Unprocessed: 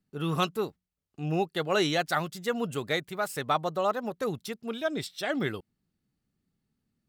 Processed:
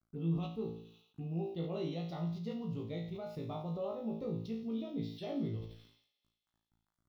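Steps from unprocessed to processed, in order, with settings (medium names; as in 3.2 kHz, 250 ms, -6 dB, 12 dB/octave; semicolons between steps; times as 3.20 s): low-pass 11 kHz; RIAA curve playback; hum notches 50/100 Hz; dynamic bell 120 Hz, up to +3 dB, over -34 dBFS, Q 0.91; compression 3:1, threshold -33 dBFS, peak gain reduction 13 dB; small samples zeroed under -59.5 dBFS; feedback comb 56 Hz, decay 0.44 s, harmonics all, mix 100%; touch-sensitive phaser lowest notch 470 Hz, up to 1.6 kHz, full sweep at -43 dBFS; feedback echo behind a high-pass 87 ms, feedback 78%, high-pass 3.8 kHz, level -11 dB; decay stretcher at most 84 dB/s; trim +4 dB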